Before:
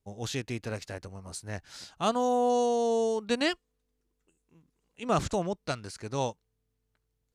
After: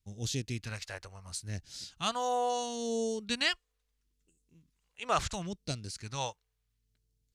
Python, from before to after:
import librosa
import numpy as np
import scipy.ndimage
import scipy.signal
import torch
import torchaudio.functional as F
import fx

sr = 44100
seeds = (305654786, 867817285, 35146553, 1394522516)

y = fx.phaser_stages(x, sr, stages=2, low_hz=210.0, high_hz=1100.0, hz=0.74, feedback_pct=45)